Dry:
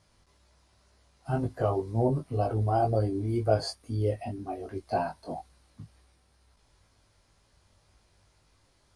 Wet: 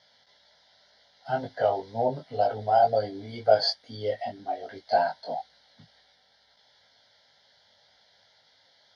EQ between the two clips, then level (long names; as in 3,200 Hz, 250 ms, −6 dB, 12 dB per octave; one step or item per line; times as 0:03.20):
loudspeaker in its box 310–5,600 Hz, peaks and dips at 320 Hz +5 dB, 2,200 Hz +4 dB, 3,300 Hz +6 dB
high-shelf EQ 3,500 Hz +7 dB
phaser with its sweep stopped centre 1,700 Hz, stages 8
+6.5 dB